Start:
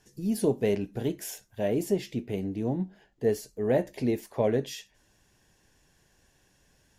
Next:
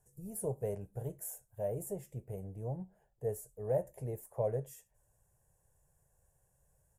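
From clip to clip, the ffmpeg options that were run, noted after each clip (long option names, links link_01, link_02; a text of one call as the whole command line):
ffmpeg -i in.wav -af "firequalizer=gain_entry='entry(140,0);entry(250,-22);entry(510,-1);entry(2000,-18);entry(4100,-29);entry(8000,2)':delay=0.05:min_phase=1,volume=-4.5dB" out.wav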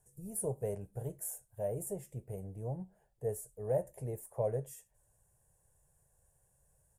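ffmpeg -i in.wav -af "equalizer=frequency=9200:width=2.7:gain=6" out.wav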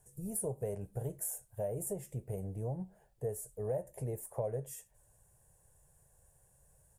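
ffmpeg -i in.wav -af "acompressor=threshold=-40dB:ratio=3,volume=5dB" out.wav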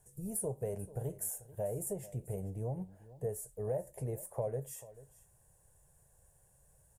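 ffmpeg -i in.wav -af "aecho=1:1:439:0.126" out.wav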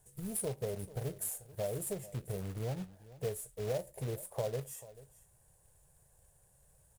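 ffmpeg -i in.wav -af "acrusher=bits=3:mode=log:mix=0:aa=0.000001" out.wav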